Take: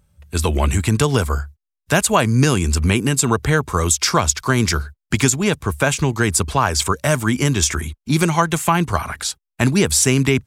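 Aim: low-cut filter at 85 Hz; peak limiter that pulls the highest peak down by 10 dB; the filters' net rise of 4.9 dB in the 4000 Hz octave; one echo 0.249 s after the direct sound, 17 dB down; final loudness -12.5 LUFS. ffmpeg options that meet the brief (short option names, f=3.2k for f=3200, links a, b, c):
-af "highpass=85,equalizer=f=4k:t=o:g=6.5,alimiter=limit=-10dB:level=0:latency=1,aecho=1:1:249:0.141,volume=8.5dB"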